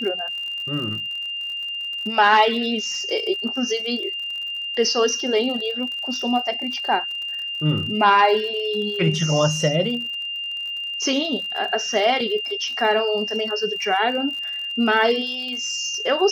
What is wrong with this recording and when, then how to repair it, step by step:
crackle 53/s -31 dBFS
tone 2800 Hz -26 dBFS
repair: de-click; notch 2800 Hz, Q 30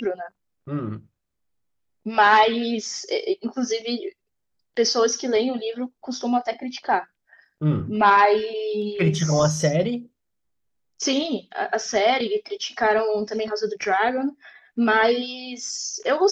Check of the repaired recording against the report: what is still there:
none

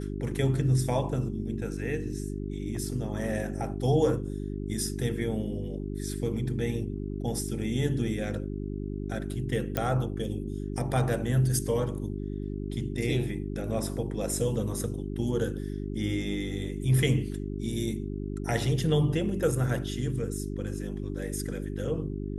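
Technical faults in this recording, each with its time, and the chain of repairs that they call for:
hum 50 Hz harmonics 8 -34 dBFS
9.77 pop -13 dBFS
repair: de-click; de-hum 50 Hz, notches 8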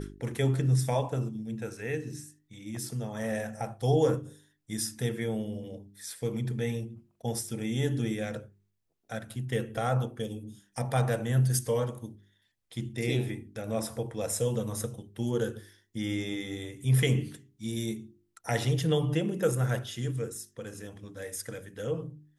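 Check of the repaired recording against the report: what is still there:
none

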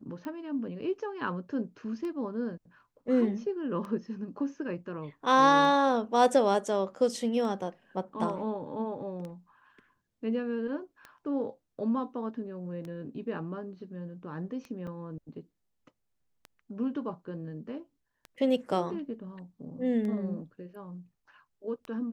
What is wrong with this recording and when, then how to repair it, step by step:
tick 33 1/3 rpm -28 dBFS
14.87 gap 3.9 ms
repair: de-click; interpolate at 14.87, 3.9 ms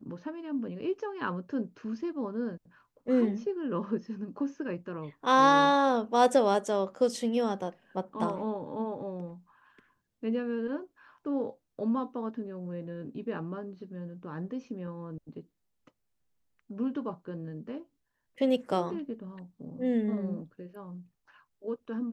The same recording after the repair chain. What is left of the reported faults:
none

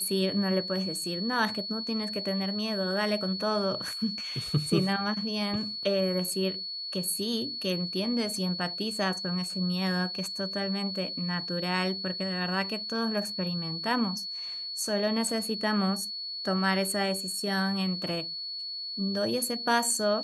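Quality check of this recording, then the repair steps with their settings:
tone 4400 Hz -34 dBFS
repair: notch 4400 Hz, Q 30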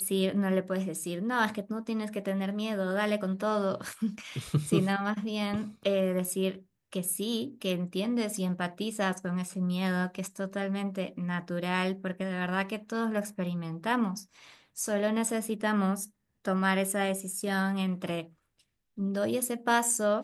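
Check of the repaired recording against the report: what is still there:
none

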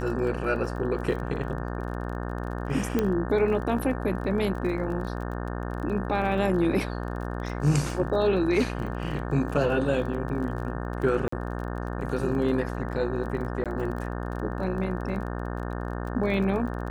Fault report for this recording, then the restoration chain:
buzz 60 Hz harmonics 30 -32 dBFS
crackle 29/s -35 dBFS
2.99 pop -12 dBFS
11.28–11.32 gap 44 ms
13.64–13.66 gap 17 ms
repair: de-click; de-hum 60 Hz, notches 30; interpolate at 11.28, 44 ms; interpolate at 13.64, 17 ms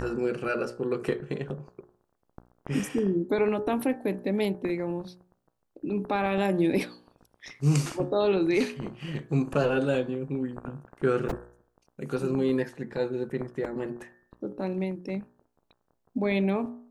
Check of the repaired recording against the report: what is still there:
2.99 pop

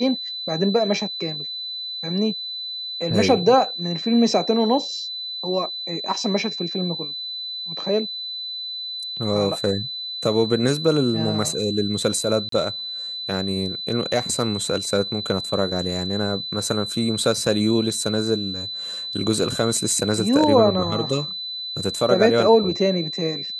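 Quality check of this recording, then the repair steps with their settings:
tone 4000 Hz -28 dBFS
12.49–12.52 gap 33 ms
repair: notch 4000 Hz, Q 30; interpolate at 12.49, 33 ms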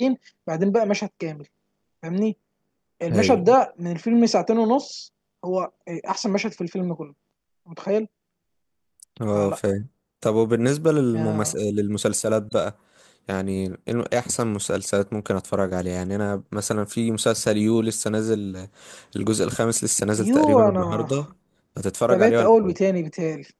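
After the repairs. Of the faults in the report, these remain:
none

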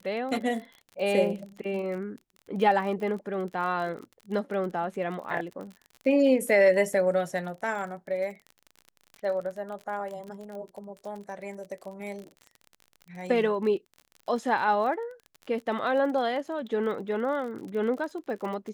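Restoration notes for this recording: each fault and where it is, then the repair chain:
crackle 40/s -36 dBFS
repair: de-click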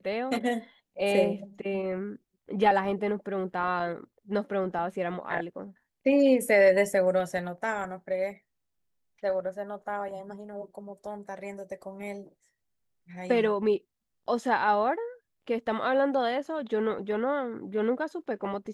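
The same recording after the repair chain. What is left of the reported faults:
none

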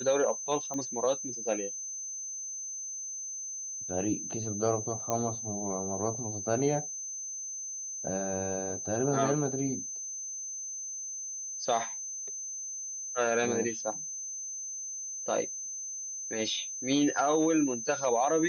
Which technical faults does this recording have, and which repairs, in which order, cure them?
tone 6200 Hz -36 dBFS
0.74 pop -24 dBFS
5.1 pop -16 dBFS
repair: de-click; notch 6200 Hz, Q 30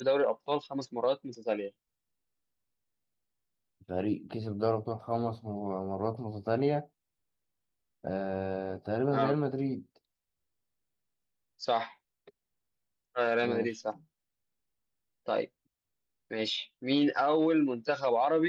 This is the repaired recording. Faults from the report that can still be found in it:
none

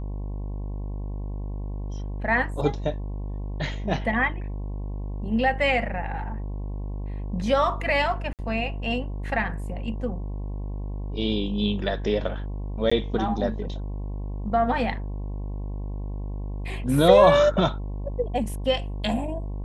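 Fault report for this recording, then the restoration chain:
buzz 50 Hz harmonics 22 -31 dBFS
8.33–8.39 gap 58 ms
12.9–12.91 gap 15 ms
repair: de-hum 50 Hz, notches 22; interpolate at 8.33, 58 ms; interpolate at 12.9, 15 ms

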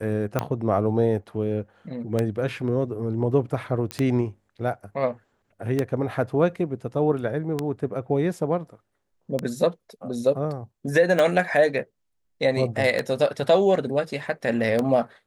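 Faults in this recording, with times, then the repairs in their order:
tick 33 1/3 rpm -10 dBFS
3.91 pop -14 dBFS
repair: de-click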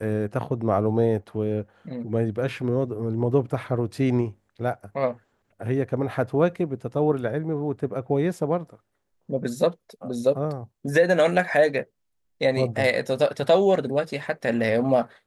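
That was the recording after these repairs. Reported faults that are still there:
none

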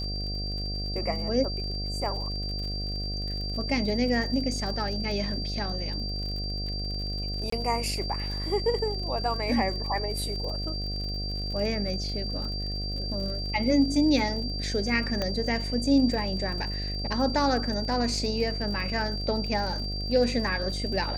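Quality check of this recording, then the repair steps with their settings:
buzz 50 Hz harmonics 15 -33 dBFS
crackle 51/s -36 dBFS
tone 4700 Hz -34 dBFS
7.5–7.52 gap 24 ms
15.22 pop -15 dBFS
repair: de-click; notch 4700 Hz, Q 30; de-hum 50 Hz, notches 15; interpolate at 7.5, 24 ms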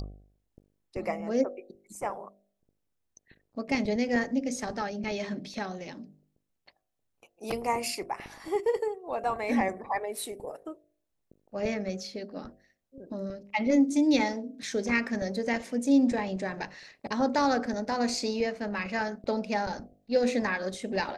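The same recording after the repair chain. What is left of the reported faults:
none

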